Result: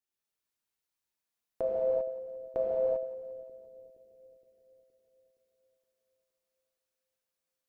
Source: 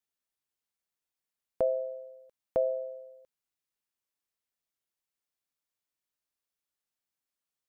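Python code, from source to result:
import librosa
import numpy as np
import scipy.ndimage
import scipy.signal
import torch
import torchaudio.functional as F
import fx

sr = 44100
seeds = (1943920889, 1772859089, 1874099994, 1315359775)

p1 = x + fx.echo_split(x, sr, split_hz=530.0, low_ms=468, high_ms=174, feedback_pct=52, wet_db=-15.0, dry=0)
p2 = fx.rev_gated(p1, sr, seeds[0], gate_ms=420, shape='flat', drr_db=-5.5)
y = F.gain(torch.from_numpy(p2), -5.0).numpy()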